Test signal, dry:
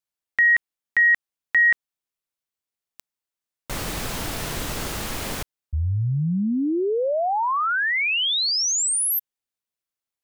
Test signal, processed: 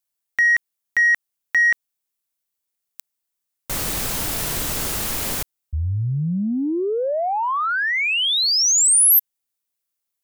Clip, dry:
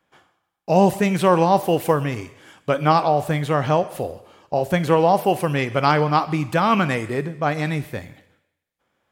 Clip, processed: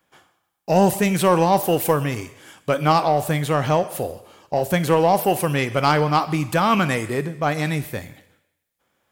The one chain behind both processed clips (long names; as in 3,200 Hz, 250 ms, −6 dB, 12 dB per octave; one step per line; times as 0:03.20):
in parallel at −5.5 dB: soft clipping −15.5 dBFS
on the sum: high-shelf EQ 6,600 Hz +11 dB
level −3 dB